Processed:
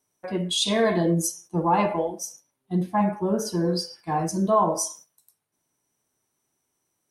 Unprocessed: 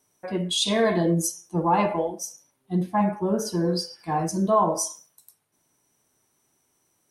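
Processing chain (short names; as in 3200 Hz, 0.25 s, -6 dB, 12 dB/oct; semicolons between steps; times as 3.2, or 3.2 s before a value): gate -46 dBFS, range -7 dB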